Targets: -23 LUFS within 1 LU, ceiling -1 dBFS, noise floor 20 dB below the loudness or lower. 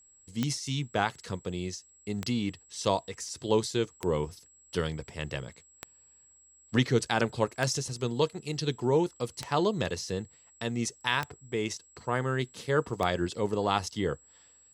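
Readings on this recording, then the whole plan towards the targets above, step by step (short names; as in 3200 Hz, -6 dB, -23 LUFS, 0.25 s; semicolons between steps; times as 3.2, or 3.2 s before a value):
clicks 8; steady tone 7700 Hz; tone level -57 dBFS; loudness -31.0 LUFS; peak -11.0 dBFS; loudness target -23.0 LUFS
-> de-click; notch 7700 Hz, Q 30; gain +8 dB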